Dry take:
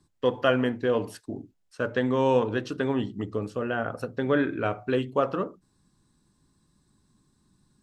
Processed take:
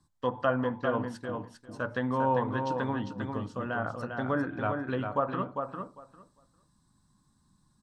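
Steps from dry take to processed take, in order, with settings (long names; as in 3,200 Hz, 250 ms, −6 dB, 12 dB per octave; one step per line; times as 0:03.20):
graphic EQ with 15 bands 400 Hz −10 dB, 1,000 Hz +5 dB, 2,500 Hz −7 dB
treble cut that deepens with the level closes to 1,500 Hz, closed at −21.5 dBFS
repeating echo 400 ms, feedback 15%, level −5.5 dB
level −2.5 dB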